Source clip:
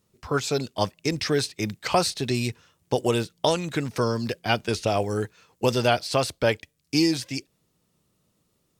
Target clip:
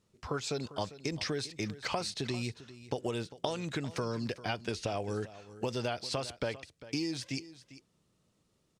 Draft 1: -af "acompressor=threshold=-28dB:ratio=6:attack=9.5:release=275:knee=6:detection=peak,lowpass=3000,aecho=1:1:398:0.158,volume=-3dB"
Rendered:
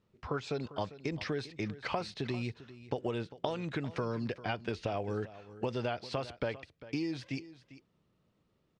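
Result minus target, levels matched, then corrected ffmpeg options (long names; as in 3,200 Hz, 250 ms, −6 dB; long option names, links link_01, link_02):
8,000 Hz band −12.5 dB
-af "acompressor=threshold=-28dB:ratio=6:attack=9.5:release=275:knee=6:detection=peak,lowpass=8400,aecho=1:1:398:0.158,volume=-3dB"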